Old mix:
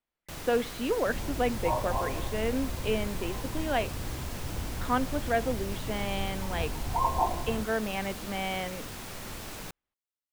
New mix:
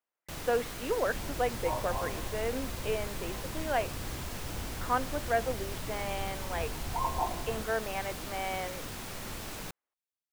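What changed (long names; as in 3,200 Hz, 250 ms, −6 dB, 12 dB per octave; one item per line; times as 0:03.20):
speech: add band-pass filter 420–2,200 Hz
second sound −5.0 dB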